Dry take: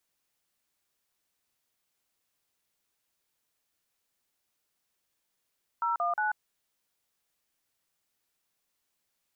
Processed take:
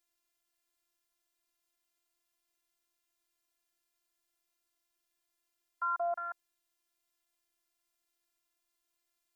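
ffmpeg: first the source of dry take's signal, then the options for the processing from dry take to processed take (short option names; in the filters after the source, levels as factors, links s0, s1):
-f lavfi -i "aevalsrc='0.0376*clip(min(mod(t,0.179),0.139-mod(t,0.179))/0.002,0,1)*(eq(floor(t/0.179),0)*(sin(2*PI*941*mod(t,0.179))+sin(2*PI*1336*mod(t,0.179)))+eq(floor(t/0.179),1)*(sin(2*PI*697*mod(t,0.179))+sin(2*PI*1209*mod(t,0.179)))+eq(floor(t/0.179),2)*(sin(2*PI*852*mod(t,0.179))+sin(2*PI*1477*mod(t,0.179))))':d=0.537:s=44100"
-af "afftfilt=real='hypot(re,im)*cos(PI*b)':imag='0':win_size=512:overlap=0.75"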